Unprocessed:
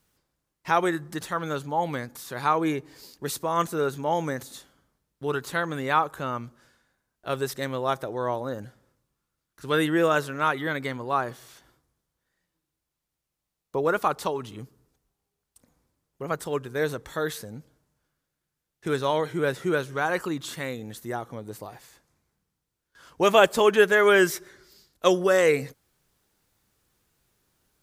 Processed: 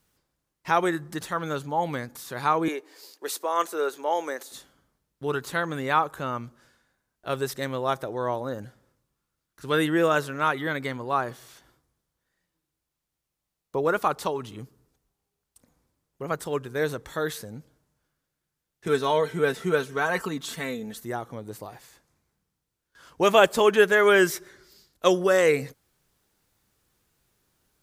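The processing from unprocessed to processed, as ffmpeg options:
-filter_complex "[0:a]asettb=1/sr,asplit=3[a][b][c];[a]atrim=end=2.684[d];[b]atrim=start=2.68:end=4.52,asetpts=PTS-STARTPTS,afade=t=in:d=0.004:c=qsin,afade=t=out:st=1.836:d=0.004:c=qsin,highpass=f=350:w=0.5412,highpass=f=350:w=1.3066[e];[c]atrim=start=4.516[f];[d][e]acrossfade=d=0.004:c1=hsin:c2=qsin[g];[g][f]acrossfade=d=0.004:c1=qsin:c2=hsin,asettb=1/sr,asplit=3[h][i][j];[h]atrim=end=18.874[k];[i]atrim=start=18.87:end=21.04,asetpts=PTS-STARTPTS,afade=t=in:d=0.004:c=qsin,afade=t=out:st=2.166:d=0.004:c=qsin,aecho=1:1:4.5:0.65,atrim=end_sample=95697[l];[j]atrim=start=21.036[m];[k][l]acrossfade=d=0.004:c1=hsin:c2=qsin[n];[n][m]acrossfade=d=0.004:c1=qsin:c2=hsin"

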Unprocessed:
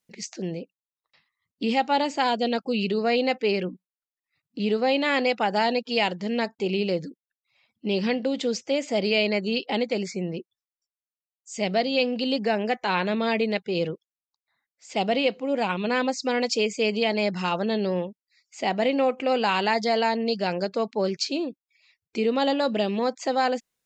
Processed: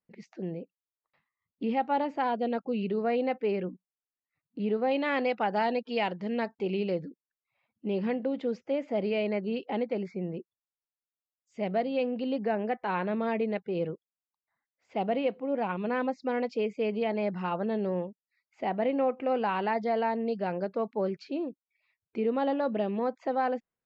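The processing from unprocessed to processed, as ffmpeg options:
-filter_complex "[0:a]asettb=1/sr,asplit=3[a][b][c];[a]atrim=end=4.914[d];[b]atrim=start=4.91:end=7.02,asetpts=PTS-STARTPTS,afade=t=in:d=0.004:c=qsin,afade=t=out:st=2.106:d=0.004:c=qsin,highshelf=f=3.2k:g=11[e];[c]atrim=start=7.016[f];[d][e]acrossfade=d=0.004:c1=hsin:c2=qsin[g];[g][f]acrossfade=d=0.004:c1=qsin:c2=hsin,lowpass=1.6k,volume=-4.5dB"

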